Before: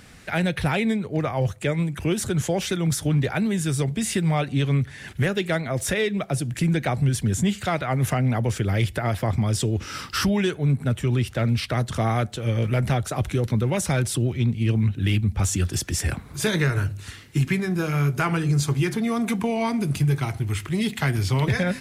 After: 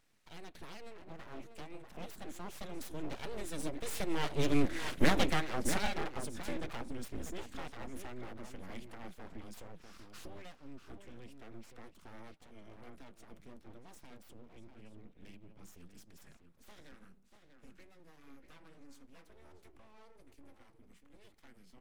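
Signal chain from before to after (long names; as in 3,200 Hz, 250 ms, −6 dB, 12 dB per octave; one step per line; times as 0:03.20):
source passing by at 0:04.88, 13 m/s, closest 3.8 metres
slap from a distant wall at 110 metres, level −7 dB
full-wave rectification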